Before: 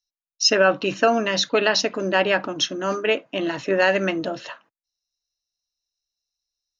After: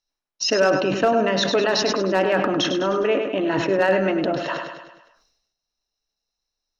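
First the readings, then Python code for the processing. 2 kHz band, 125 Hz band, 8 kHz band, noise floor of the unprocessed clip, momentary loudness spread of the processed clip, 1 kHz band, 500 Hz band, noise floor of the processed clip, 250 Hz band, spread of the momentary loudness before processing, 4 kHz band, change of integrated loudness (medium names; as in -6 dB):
-2.5 dB, +3.5 dB, no reading, under -85 dBFS, 6 LU, +1.0 dB, +2.0 dB, -84 dBFS, +3.5 dB, 8 LU, -2.0 dB, +0.5 dB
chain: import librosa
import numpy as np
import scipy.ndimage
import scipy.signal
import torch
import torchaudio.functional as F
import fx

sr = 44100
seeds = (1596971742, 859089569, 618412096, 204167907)

p1 = fx.lowpass(x, sr, hz=1100.0, slope=6)
p2 = fx.over_compress(p1, sr, threshold_db=-33.0, ratio=-1.0)
p3 = p1 + (p2 * 10.0 ** (2.0 / 20.0))
p4 = fx.peak_eq(p3, sr, hz=76.0, db=-7.5, octaves=1.9)
p5 = p4 + fx.echo_feedback(p4, sr, ms=102, feedback_pct=48, wet_db=-8.0, dry=0)
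p6 = np.clip(p5, -10.0 ** (-10.0 / 20.0), 10.0 ** (-10.0 / 20.0))
y = fx.sustainer(p6, sr, db_per_s=55.0)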